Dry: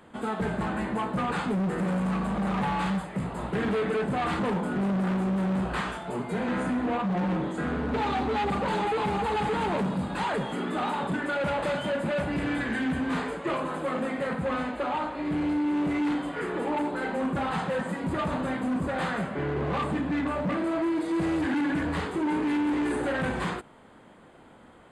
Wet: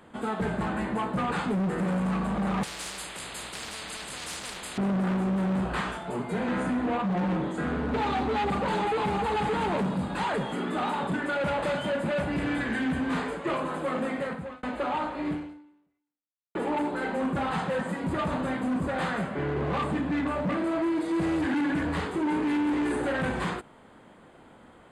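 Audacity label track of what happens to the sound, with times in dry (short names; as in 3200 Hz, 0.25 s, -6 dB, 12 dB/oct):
2.630000	4.780000	spectral compressor 10:1
14.160000	14.630000	fade out
15.300000	16.550000	fade out exponential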